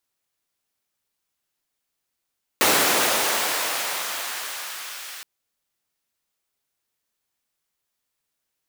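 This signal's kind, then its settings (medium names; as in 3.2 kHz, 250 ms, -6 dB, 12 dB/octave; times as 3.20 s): swept filtered noise pink, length 2.62 s highpass, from 360 Hz, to 1.6 kHz, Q 0.79, gain ramp -18.5 dB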